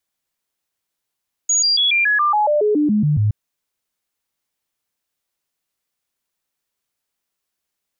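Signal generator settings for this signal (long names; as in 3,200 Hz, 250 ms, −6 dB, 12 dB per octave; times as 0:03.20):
stepped sweep 6,740 Hz down, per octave 2, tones 13, 0.14 s, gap 0.00 s −13 dBFS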